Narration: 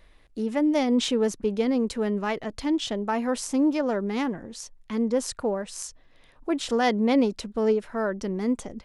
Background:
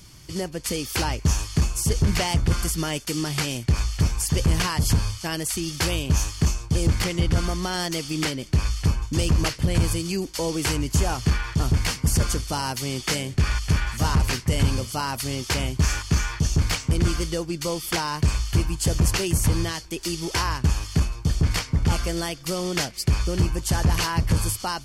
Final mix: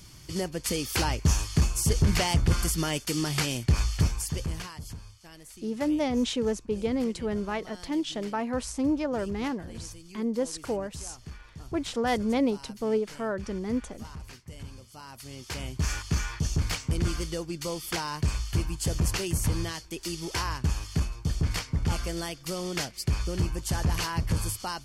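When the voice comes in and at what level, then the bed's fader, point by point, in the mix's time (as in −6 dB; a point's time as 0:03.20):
5.25 s, −4.0 dB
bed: 0:03.98 −2 dB
0:04.97 −21.5 dB
0:14.81 −21.5 dB
0:15.92 −6 dB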